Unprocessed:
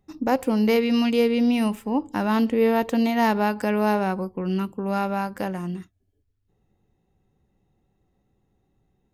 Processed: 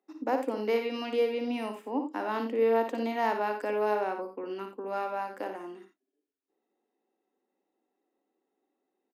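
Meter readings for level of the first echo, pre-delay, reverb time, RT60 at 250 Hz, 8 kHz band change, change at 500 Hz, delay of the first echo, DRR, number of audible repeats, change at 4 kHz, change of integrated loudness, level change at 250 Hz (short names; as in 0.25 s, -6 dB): -7.5 dB, none, none, none, n/a, -4.5 dB, 57 ms, none, 2, -9.5 dB, -8.0 dB, -14.0 dB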